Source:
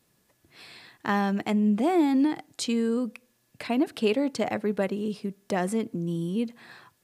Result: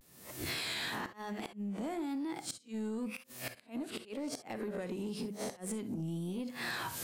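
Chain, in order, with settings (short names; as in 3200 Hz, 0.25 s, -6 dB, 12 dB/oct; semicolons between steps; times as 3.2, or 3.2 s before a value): spectral swells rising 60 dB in 0.33 s; recorder AGC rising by 57 dB/s; HPF 44 Hz 12 dB/oct; compressor 16:1, threshold -31 dBFS, peak gain reduction 14 dB; tone controls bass +1 dB, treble +6 dB; notches 50/100/150/200 Hz; flipped gate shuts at -20 dBFS, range -32 dB; bell 5700 Hz -2.5 dB; non-linear reverb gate 80 ms rising, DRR 12 dB; soft clip -28.5 dBFS, distortion -17 dB; vibrato 0.97 Hz 98 cents; gain -2.5 dB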